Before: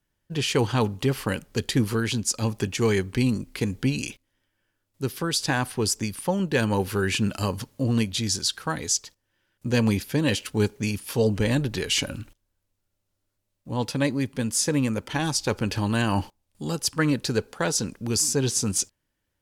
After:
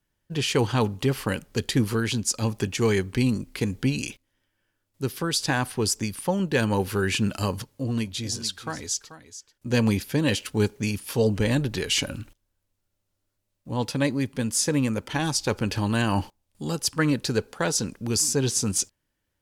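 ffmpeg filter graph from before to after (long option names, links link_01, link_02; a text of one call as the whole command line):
ffmpeg -i in.wav -filter_complex "[0:a]asettb=1/sr,asplit=3[link_01][link_02][link_03];[link_01]atrim=end=7.624[link_04];[link_02]atrim=start=7.62:end=9.71,asetpts=PTS-STARTPTS,afade=type=in:duration=0.004:curve=qsin,afade=type=out:start_time=2.086:duration=0.004:curve=qsin,flanger=delay=1.8:depth=1.5:regen=-65:speed=1.2:shape=triangular,aecho=1:1:436:0.211,atrim=end_sample=92169[link_05];[link_03]atrim=start=9.706[link_06];[link_04][link_05]acrossfade=duration=0.004:curve1=hsin:curve2=qsin[link_07];[link_07][link_06]acrossfade=duration=0.004:curve1=qsin:curve2=hsin" out.wav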